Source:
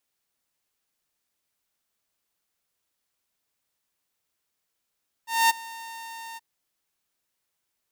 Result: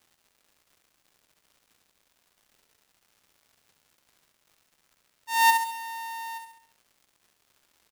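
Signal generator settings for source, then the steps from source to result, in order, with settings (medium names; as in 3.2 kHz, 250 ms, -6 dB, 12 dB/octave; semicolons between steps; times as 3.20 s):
ADSR saw 913 Hz, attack 226 ms, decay 20 ms, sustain -21.5 dB, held 1.10 s, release 26 ms -13 dBFS
crackle 220 per s -50 dBFS; on a send: feedback delay 68 ms, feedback 47%, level -6 dB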